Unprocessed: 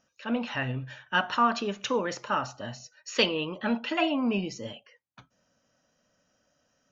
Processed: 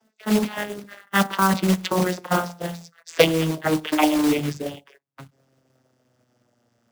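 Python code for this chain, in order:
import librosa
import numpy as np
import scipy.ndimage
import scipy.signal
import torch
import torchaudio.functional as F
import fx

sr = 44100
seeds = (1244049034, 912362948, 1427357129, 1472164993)

y = fx.vocoder_glide(x, sr, note=57, semitones=-11)
y = fx.quant_float(y, sr, bits=2)
y = fx.hpss(y, sr, part='percussive', gain_db=9)
y = y * 10.0 ** (6.5 / 20.0)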